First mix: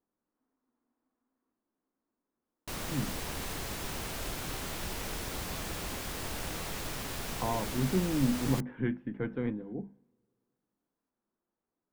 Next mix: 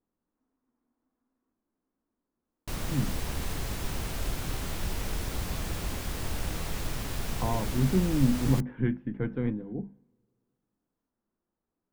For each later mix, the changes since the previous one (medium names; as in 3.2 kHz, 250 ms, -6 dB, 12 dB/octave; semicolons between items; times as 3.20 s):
master: add bass shelf 160 Hz +10.5 dB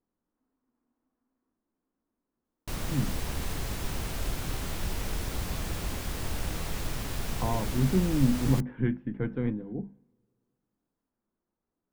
no change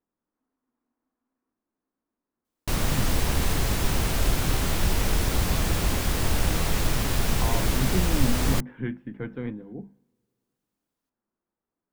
speech: add tilt EQ +1.5 dB/octave; background +9.0 dB